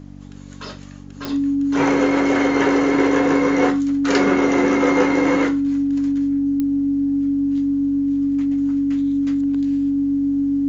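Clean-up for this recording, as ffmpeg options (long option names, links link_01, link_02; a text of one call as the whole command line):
ffmpeg -i in.wav -af "adeclick=threshold=4,bandreject=frequency=47.9:width_type=h:width=4,bandreject=frequency=95.8:width_type=h:width=4,bandreject=frequency=143.7:width_type=h:width=4,bandreject=frequency=191.6:width_type=h:width=4,bandreject=frequency=239.5:width_type=h:width=4,bandreject=frequency=287.4:width_type=h:width=4,bandreject=frequency=280:width=30" out.wav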